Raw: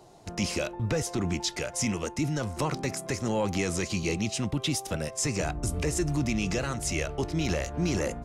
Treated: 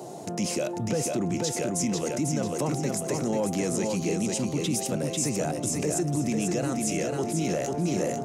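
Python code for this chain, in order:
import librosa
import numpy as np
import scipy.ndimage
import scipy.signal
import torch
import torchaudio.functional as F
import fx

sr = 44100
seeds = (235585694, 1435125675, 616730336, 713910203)

p1 = scipy.signal.sosfilt(scipy.signal.butter(4, 140.0, 'highpass', fs=sr, output='sos'), x)
p2 = fx.band_shelf(p1, sr, hz=2200.0, db=-8.0, octaves=2.7)
p3 = p2 + fx.echo_feedback(p2, sr, ms=494, feedback_pct=33, wet_db=-5.0, dry=0)
y = fx.env_flatten(p3, sr, amount_pct=50)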